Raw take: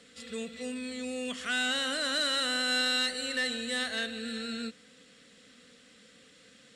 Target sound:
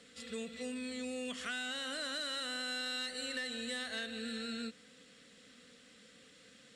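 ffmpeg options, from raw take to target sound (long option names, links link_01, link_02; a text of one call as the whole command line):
ffmpeg -i in.wav -af "acompressor=threshold=-34dB:ratio=6,volume=-2.5dB" out.wav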